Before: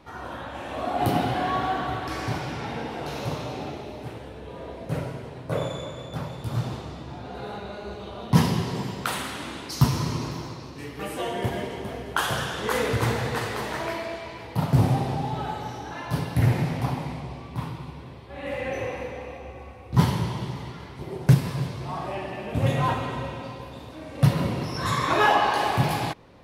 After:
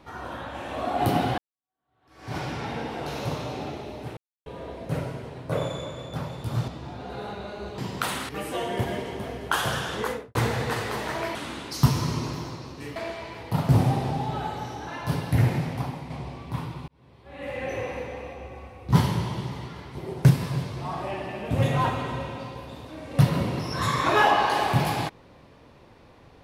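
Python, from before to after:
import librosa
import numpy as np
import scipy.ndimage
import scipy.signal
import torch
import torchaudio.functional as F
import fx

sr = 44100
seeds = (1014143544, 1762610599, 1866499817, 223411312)

y = fx.studio_fade_out(x, sr, start_s=12.58, length_s=0.42)
y = fx.edit(y, sr, fx.fade_in_span(start_s=1.38, length_s=0.99, curve='exp'),
    fx.silence(start_s=4.17, length_s=0.29),
    fx.cut(start_s=6.68, length_s=0.25),
    fx.cut(start_s=8.03, length_s=0.79),
    fx.move(start_s=9.33, length_s=1.61, to_s=14.0),
    fx.fade_out_to(start_s=16.39, length_s=0.75, floor_db=-6.5),
    fx.fade_in_span(start_s=17.92, length_s=1.23, curve='qsin'), tone=tone)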